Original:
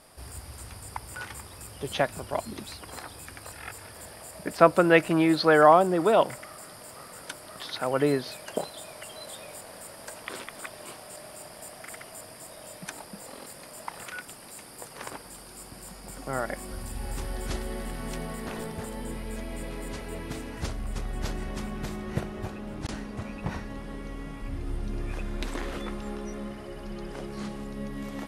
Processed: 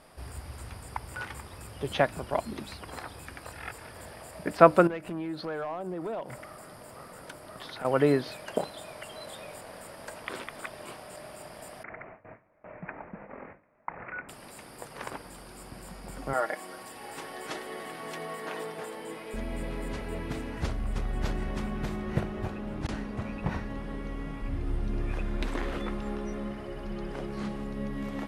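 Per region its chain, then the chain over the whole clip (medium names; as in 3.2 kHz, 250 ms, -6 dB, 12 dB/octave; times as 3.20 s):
4.87–7.85 s: peaking EQ 3.1 kHz -4 dB 2.9 oct + compression 4:1, threshold -35 dBFS + hard clipper -30 dBFS
11.83–14.29 s: CVSD coder 64 kbps + steep low-pass 2.4 kHz 72 dB/octave + gate with hold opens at -36 dBFS, closes at -42 dBFS
16.33–19.34 s: high-pass 380 Hz + comb 6.4 ms, depth 57%
whole clip: tone controls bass +1 dB, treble -8 dB; de-hum 100.2 Hz, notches 3; trim +1 dB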